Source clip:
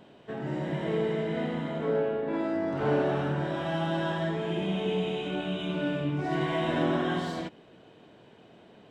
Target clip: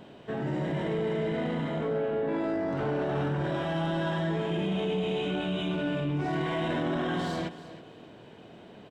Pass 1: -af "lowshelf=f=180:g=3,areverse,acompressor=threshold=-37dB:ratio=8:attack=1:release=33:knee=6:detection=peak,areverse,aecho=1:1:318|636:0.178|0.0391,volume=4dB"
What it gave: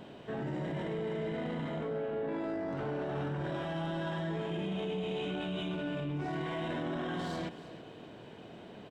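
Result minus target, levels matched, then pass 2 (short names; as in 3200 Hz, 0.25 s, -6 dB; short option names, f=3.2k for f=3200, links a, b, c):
compressor: peak gain reduction +6.5 dB
-af "lowshelf=f=180:g=3,areverse,acompressor=threshold=-29.5dB:ratio=8:attack=1:release=33:knee=6:detection=peak,areverse,aecho=1:1:318|636:0.178|0.0391,volume=4dB"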